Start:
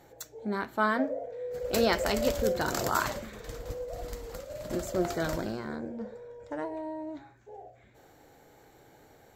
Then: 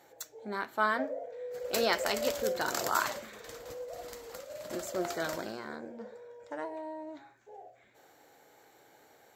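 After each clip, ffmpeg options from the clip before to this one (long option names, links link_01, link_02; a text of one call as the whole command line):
ffmpeg -i in.wav -af "highpass=frequency=580:poles=1" out.wav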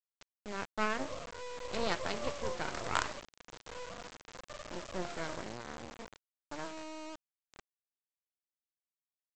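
ffmpeg -i in.wav -af "adynamicsmooth=sensitivity=1:basefreq=3700,aresample=16000,acrusher=bits=4:dc=4:mix=0:aa=0.000001,aresample=44100,volume=-1.5dB" out.wav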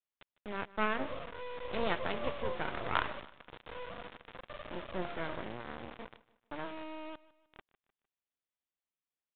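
ffmpeg -i in.wav -af "aecho=1:1:152|304|456:0.106|0.0445|0.0187,aresample=8000,aresample=44100,volume=1dB" out.wav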